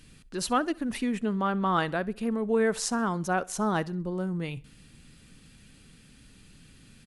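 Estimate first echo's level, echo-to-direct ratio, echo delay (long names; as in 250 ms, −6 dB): −23.5 dB, −22.5 dB, 65 ms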